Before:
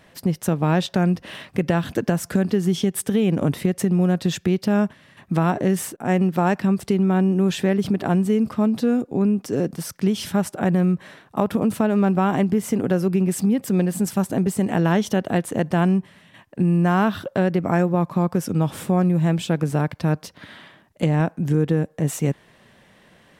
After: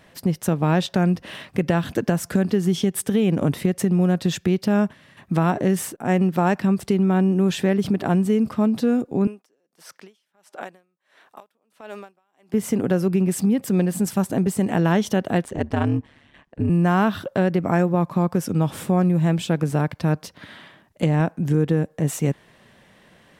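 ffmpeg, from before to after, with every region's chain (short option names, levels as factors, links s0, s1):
-filter_complex "[0:a]asettb=1/sr,asplit=3[s0][s1][s2];[s0]atrim=end=9.274[s3];[s1]atrim=start=9.27:end=12.54,asetpts=PTS-STARTPTS,afade=t=in:d=0.004:c=qsin,afade=t=out:st=3.266:d=0.004:c=qsin,highpass=530,acrossover=split=2700|5900[s4][s5][s6];[s4]acompressor=threshold=0.0316:ratio=4[s7];[s5]acompressor=threshold=0.00631:ratio=4[s8];[s6]acompressor=threshold=0.00447:ratio=4[s9];[s7][s8][s9]amix=inputs=3:normalize=0,aeval=exprs='val(0)*pow(10,-38*(0.5-0.5*cos(2*PI*1.5*n/s))/20)':c=same[s10];[s2]atrim=start=12.536[s11];[s3][s10]acrossfade=d=0.004:c1=hsin:c2=qsin[s12];[s12][s11]acrossfade=d=0.004:c1=qsin:c2=hsin,asettb=1/sr,asplit=3[s13][s14][s15];[s13]atrim=end=15.444[s16];[s14]atrim=start=15.44:end=16.7,asetpts=PTS-STARTPTS,afade=t=in:d=0.004:c=qsin,afade=t=out:st=1.256:d=0.004:c=qsin,aeval=exprs='val(0)*sin(2*PI*72*n/s)':c=same,adynamicsmooth=sensitivity=6.5:basefreq=6800[s17];[s15]atrim=start=16.696[s18];[s16][s17]acrossfade=d=0.004:c1=hsin:c2=qsin[s19];[s19][s18]acrossfade=d=0.004:c1=qsin:c2=hsin"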